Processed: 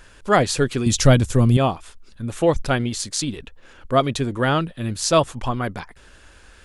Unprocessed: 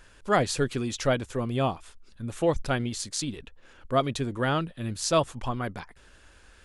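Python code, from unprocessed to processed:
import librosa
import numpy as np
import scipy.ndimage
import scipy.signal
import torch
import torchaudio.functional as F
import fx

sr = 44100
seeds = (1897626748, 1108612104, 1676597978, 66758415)

y = fx.bass_treble(x, sr, bass_db=12, treble_db=9, at=(0.86, 1.57))
y = y * 10.0 ** (6.5 / 20.0)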